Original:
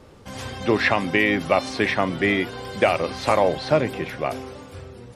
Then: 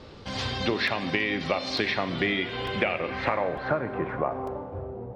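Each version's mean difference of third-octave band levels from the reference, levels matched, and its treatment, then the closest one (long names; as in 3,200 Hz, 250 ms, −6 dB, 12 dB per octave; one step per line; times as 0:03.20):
6.5 dB: low-pass filter sweep 4,300 Hz → 730 Hz, 0:02.08–0:04.77
downward compressor, threshold −25 dBFS, peak gain reduction 13.5 dB
four-comb reverb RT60 1.3 s, combs from 33 ms, DRR 11 dB
regular buffer underruns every 0.90 s, samples 128, repeat, from 0:00.87
level +1.5 dB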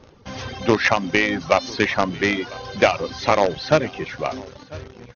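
4.5 dB: reverb reduction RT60 0.91 s
in parallel at −11 dB: log-companded quantiser 2 bits
on the sum: linear-phase brick-wall low-pass 6,600 Hz
single-tap delay 997 ms −21.5 dB
level −1 dB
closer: second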